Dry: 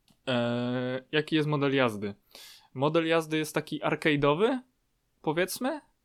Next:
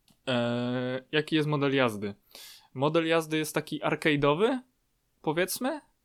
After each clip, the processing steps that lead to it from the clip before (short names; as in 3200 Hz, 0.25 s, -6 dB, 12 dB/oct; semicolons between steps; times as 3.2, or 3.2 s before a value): high shelf 7000 Hz +4.5 dB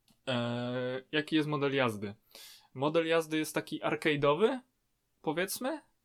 flange 0.48 Hz, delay 8.6 ms, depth 1.7 ms, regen +45%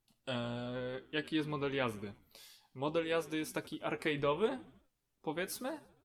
frequency-shifting echo 80 ms, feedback 57%, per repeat -62 Hz, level -20.5 dB; gain -5.5 dB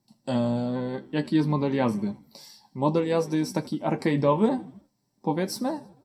reverb, pre-delay 3 ms, DRR 8.5 dB; gain +4 dB